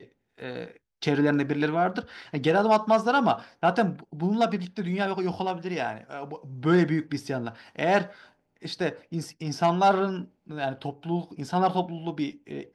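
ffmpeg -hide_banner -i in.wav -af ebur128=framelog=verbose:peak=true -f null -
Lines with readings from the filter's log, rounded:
Integrated loudness:
  I:         -26.5 LUFS
  Threshold: -37.2 LUFS
Loudness range:
  LRA:         3.7 LU
  Threshold: -46.8 LUFS
  LRA low:   -28.4 LUFS
  LRA high:  -24.7 LUFS
True peak:
  Peak:      -10.4 dBFS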